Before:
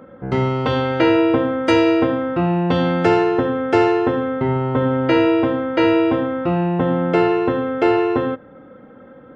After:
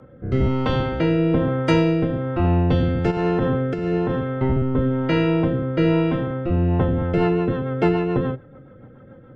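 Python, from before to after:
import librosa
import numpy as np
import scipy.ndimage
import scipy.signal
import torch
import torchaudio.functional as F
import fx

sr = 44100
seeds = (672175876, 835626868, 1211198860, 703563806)

y = fx.octave_divider(x, sr, octaves=1, level_db=3.0)
y = fx.over_compress(y, sr, threshold_db=-15.0, ratio=-0.5, at=(3.1, 4.19), fade=0.02)
y = fx.rotary_switch(y, sr, hz=1.1, then_hz=7.0, switch_at_s=6.48)
y = y * 10.0 ** (-3.0 / 20.0)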